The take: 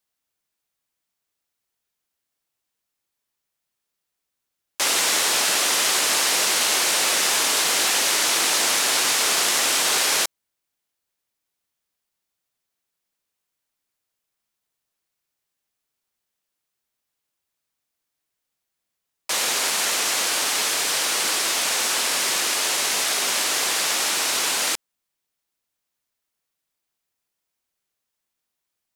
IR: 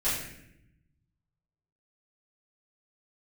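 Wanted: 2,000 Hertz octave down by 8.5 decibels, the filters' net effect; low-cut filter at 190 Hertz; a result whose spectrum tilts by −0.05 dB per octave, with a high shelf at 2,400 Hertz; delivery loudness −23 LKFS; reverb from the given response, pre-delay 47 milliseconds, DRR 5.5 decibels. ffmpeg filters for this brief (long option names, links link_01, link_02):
-filter_complex "[0:a]highpass=190,equalizer=frequency=2000:width_type=o:gain=-9,highshelf=frequency=2400:gain=-4,asplit=2[link_01][link_02];[1:a]atrim=start_sample=2205,adelay=47[link_03];[link_02][link_03]afir=irnorm=-1:irlink=0,volume=-15dB[link_04];[link_01][link_04]amix=inputs=2:normalize=0,volume=-0.5dB"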